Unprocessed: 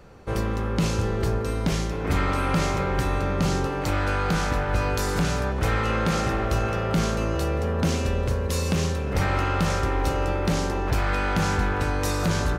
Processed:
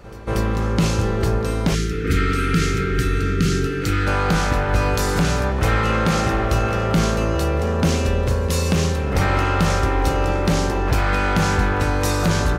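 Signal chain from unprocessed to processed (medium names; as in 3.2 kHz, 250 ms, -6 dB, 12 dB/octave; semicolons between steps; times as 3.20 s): time-frequency box 1.75–4.07 s, 500–1200 Hz -25 dB; pre-echo 235 ms -18 dB; trim +5 dB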